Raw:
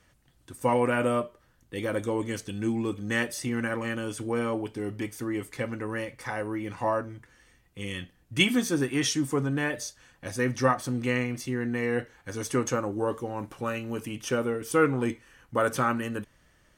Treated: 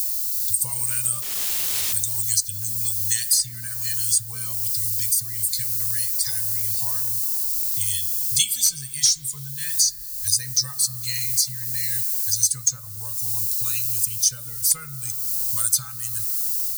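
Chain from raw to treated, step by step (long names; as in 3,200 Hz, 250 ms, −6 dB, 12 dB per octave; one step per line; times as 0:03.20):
spectral dynamics exaggerated over time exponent 1.5
background noise violet −62 dBFS
drawn EQ curve 120 Hz 0 dB, 400 Hz −24 dB, 2,800 Hz −13 dB, 4,300 Hz +13 dB
automatic gain control gain up to 8 dB
hard clipping −10 dBFS, distortion −17 dB
guitar amp tone stack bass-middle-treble 10-0-10
0:01.22–0:01.93: wrap-around overflow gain 36 dB
spring reverb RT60 1.5 s, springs 30 ms, chirp 60 ms, DRR 14.5 dB
multiband upward and downward compressor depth 100%
level +7 dB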